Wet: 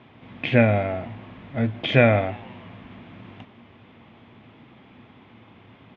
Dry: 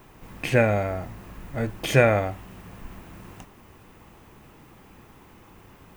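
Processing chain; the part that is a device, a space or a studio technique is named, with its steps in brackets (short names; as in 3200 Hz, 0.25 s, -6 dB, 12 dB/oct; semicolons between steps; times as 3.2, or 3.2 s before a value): frequency-shifting delay pedal into a guitar cabinet (frequency-shifting echo 0.161 s, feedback 53%, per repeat +130 Hz, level -22.5 dB; speaker cabinet 96–3600 Hz, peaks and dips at 110 Hz +9 dB, 240 Hz +10 dB, 650 Hz +5 dB, 2200 Hz +6 dB, 3400 Hz +10 dB); gain -2 dB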